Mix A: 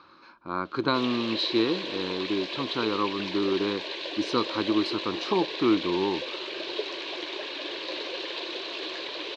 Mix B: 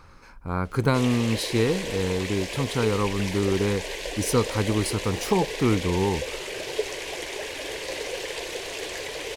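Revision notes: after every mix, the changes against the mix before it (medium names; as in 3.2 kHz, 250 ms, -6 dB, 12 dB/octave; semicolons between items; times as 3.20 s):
master: remove cabinet simulation 310–4100 Hz, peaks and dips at 330 Hz +9 dB, 460 Hz -9 dB, 780 Hz -6 dB, 1.1 kHz +4 dB, 2 kHz -8 dB, 4 kHz +9 dB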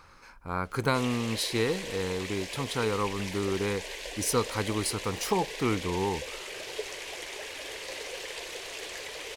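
background -4.5 dB; master: add bass shelf 460 Hz -9 dB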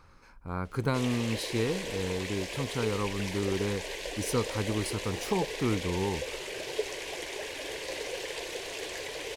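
speech -7.0 dB; master: add bass shelf 460 Hz +9 dB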